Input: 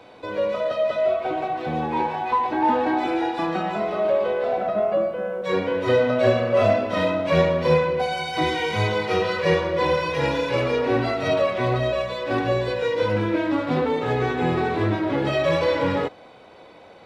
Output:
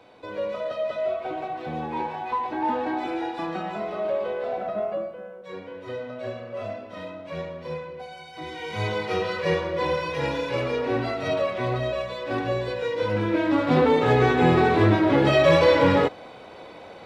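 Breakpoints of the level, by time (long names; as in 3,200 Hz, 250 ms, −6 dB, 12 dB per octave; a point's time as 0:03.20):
0:04.83 −5.5 dB
0:05.44 −15 dB
0:08.41 −15 dB
0:08.88 −4 dB
0:12.98 −4 dB
0:13.86 +4 dB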